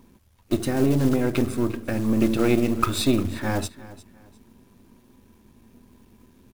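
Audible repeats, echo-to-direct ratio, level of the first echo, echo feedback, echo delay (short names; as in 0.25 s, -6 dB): 2, -17.5 dB, -18.0 dB, 28%, 0.351 s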